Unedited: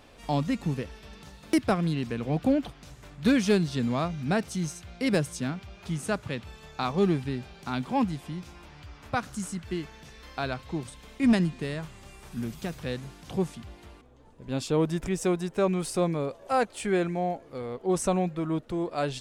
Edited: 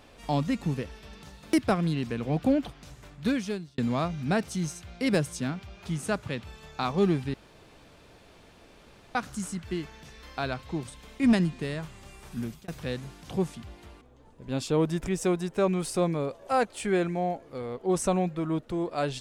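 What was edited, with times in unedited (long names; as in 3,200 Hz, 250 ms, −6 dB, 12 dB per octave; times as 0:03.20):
0:02.98–0:03.78: fade out
0:07.34–0:09.15: fill with room tone
0:12.36–0:12.68: fade out equal-power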